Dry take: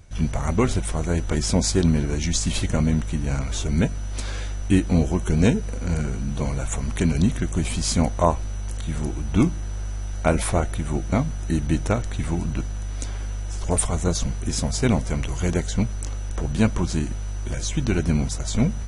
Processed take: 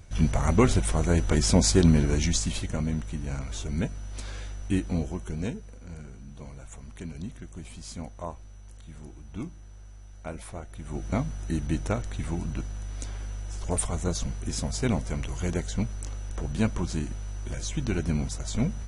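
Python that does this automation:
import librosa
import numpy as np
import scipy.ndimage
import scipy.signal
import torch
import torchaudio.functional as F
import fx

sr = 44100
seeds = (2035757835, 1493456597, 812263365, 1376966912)

y = fx.gain(x, sr, db=fx.line((2.2, 0.0), (2.62, -8.0), (4.86, -8.0), (5.83, -17.5), (10.66, -17.5), (11.06, -6.0)))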